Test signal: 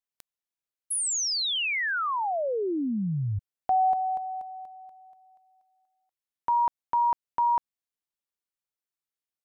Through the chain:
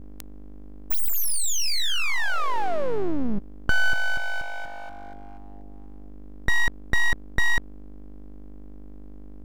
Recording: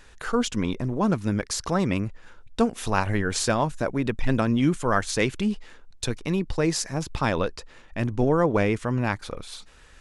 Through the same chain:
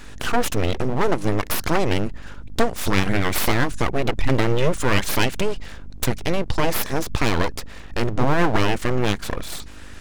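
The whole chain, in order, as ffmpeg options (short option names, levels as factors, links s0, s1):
-filter_complex "[0:a]asplit=2[s0][s1];[s1]acompressor=threshold=0.02:ratio=6:attack=95:release=64,volume=1.41[s2];[s0][s2]amix=inputs=2:normalize=0,aeval=exprs='val(0)+0.01*(sin(2*PI*50*n/s)+sin(2*PI*2*50*n/s)/2+sin(2*PI*3*50*n/s)/3+sin(2*PI*4*50*n/s)/4+sin(2*PI*5*50*n/s)/5)':c=same,aeval=exprs='abs(val(0))':c=same,volume=1.33"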